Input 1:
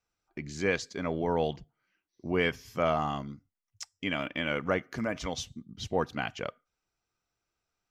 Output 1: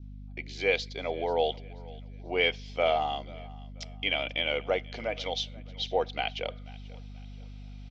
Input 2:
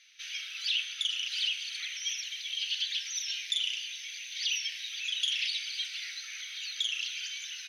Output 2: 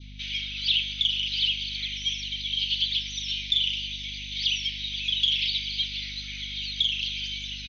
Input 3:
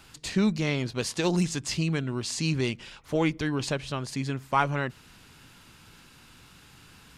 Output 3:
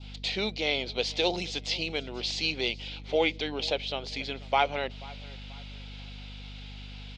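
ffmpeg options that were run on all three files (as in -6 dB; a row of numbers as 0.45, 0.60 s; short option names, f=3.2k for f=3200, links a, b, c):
-af "areverse,acompressor=mode=upward:threshold=-46dB:ratio=2.5,areverse,aecho=1:1:486|972|1458:0.0794|0.0294|0.0109,aexciter=amount=6.3:drive=7.3:freq=2.3k,highpass=460,equalizer=f=490:t=q:w=4:g=6,equalizer=f=740:t=q:w=4:g=7,equalizer=f=1.1k:t=q:w=4:g=-9,equalizer=f=1.8k:t=q:w=4:g=-6,equalizer=f=2.7k:t=q:w=4:g=-9,lowpass=f=3k:w=0.5412,lowpass=f=3k:w=1.3066,aeval=exprs='val(0)+0.00794*(sin(2*PI*50*n/s)+sin(2*PI*2*50*n/s)/2+sin(2*PI*3*50*n/s)/3+sin(2*PI*4*50*n/s)/4+sin(2*PI*5*50*n/s)/5)':c=same,adynamicequalizer=threshold=0.00891:dfrequency=1900:dqfactor=1.2:tfrequency=1900:tqfactor=1.2:attack=5:release=100:ratio=0.375:range=2.5:mode=cutabove:tftype=bell" -ar 48000 -c:a libopus -b:a 64k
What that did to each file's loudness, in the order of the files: +2.0, +6.0, -1.0 LU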